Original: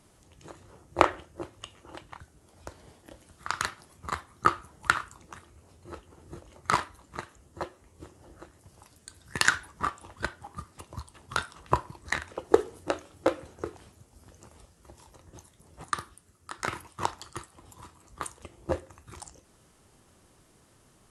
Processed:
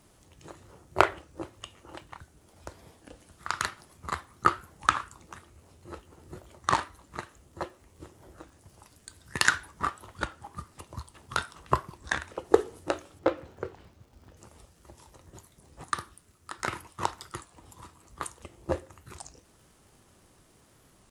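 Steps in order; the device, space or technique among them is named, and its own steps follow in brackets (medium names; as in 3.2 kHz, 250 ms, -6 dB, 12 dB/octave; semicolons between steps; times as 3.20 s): 13.19–14.37 s: distance through air 130 m; warped LP (warped record 33 1/3 rpm, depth 160 cents; crackle 79 per s -52 dBFS; pink noise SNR 39 dB)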